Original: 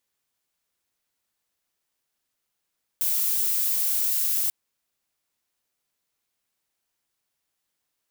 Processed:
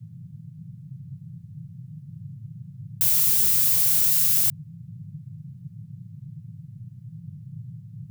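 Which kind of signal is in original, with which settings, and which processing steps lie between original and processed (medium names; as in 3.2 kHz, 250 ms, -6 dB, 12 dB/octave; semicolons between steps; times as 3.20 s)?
noise violet, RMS -24 dBFS 1.49 s
in parallel at -3.5 dB: bit crusher 6-bit; on the sum: band noise 100–170 Hz -40 dBFS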